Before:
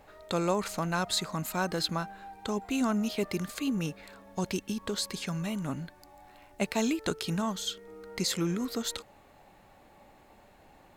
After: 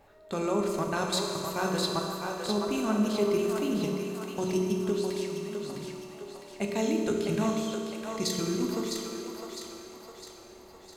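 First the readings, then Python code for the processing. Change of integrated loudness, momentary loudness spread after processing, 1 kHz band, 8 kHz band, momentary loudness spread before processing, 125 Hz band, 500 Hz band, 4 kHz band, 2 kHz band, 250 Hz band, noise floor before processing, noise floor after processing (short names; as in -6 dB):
+1.5 dB, 16 LU, +1.0 dB, -0.5 dB, 10 LU, -0.5 dB, +6.0 dB, -1.0 dB, -1.0 dB, +2.0 dB, -58 dBFS, -51 dBFS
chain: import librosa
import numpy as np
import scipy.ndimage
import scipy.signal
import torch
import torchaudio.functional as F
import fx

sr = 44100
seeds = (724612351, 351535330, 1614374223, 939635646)

y = fx.peak_eq(x, sr, hz=330.0, db=2.5, octaves=1.2)
y = fx.level_steps(y, sr, step_db=15)
y = fx.echo_split(y, sr, split_hz=400.0, low_ms=90, high_ms=657, feedback_pct=52, wet_db=-5)
y = fx.rev_fdn(y, sr, rt60_s=2.4, lf_ratio=1.25, hf_ratio=0.85, size_ms=15.0, drr_db=1.0)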